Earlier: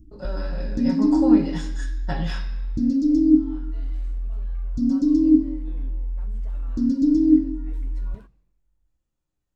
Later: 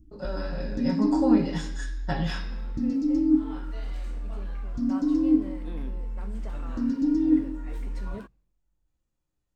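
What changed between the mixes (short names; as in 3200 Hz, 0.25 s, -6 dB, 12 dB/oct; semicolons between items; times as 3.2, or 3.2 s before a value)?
first sound -5.5 dB; second sound +9.0 dB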